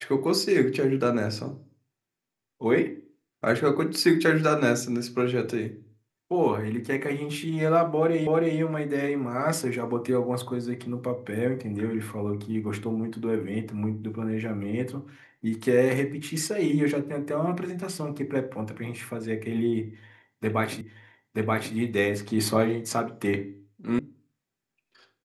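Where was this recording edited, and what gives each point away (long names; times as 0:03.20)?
0:08.27: the same again, the last 0.32 s
0:20.81: the same again, the last 0.93 s
0:23.99: cut off before it has died away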